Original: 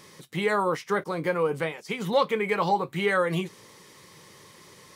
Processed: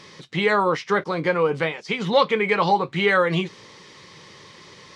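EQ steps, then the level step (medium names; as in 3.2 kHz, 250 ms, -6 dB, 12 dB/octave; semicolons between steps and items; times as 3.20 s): tape spacing loss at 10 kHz 24 dB; peaking EQ 4.9 kHz +13 dB 2.5 oct; +5.0 dB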